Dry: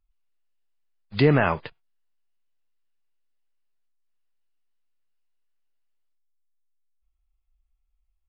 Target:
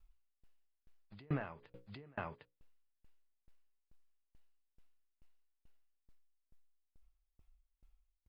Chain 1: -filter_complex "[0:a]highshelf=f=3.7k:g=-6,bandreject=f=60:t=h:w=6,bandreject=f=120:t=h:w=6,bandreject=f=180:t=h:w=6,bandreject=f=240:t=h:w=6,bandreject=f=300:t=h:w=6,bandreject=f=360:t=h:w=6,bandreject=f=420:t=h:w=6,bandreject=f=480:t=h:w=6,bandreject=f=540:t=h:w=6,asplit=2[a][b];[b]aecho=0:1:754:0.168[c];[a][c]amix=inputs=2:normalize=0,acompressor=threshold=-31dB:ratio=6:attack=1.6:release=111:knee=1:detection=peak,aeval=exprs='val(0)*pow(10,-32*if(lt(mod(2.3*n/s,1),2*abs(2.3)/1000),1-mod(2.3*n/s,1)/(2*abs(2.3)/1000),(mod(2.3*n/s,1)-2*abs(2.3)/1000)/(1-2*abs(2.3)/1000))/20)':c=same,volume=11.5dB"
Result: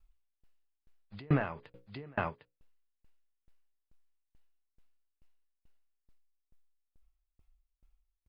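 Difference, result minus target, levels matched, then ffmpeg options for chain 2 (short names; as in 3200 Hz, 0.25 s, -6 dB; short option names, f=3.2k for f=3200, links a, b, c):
compressor: peak gain reduction -9 dB
-filter_complex "[0:a]highshelf=f=3.7k:g=-6,bandreject=f=60:t=h:w=6,bandreject=f=120:t=h:w=6,bandreject=f=180:t=h:w=6,bandreject=f=240:t=h:w=6,bandreject=f=300:t=h:w=6,bandreject=f=360:t=h:w=6,bandreject=f=420:t=h:w=6,bandreject=f=480:t=h:w=6,bandreject=f=540:t=h:w=6,asplit=2[a][b];[b]aecho=0:1:754:0.168[c];[a][c]amix=inputs=2:normalize=0,acompressor=threshold=-42dB:ratio=6:attack=1.6:release=111:knee=1:detection=peak,aeval=exprs='val(0)*pow(10,-32*if(lt(mod(2.3*n/s,1),2*abs(2.3)/1000),1-mod(2.3*n/s,1)/(2*abs(2.3)/1000),(mod(2.3*n/s,1)-2*abs(2.3)/1000)/(1-2*abs(2.3)/1000))/20)':c=same,volume=11.5dB"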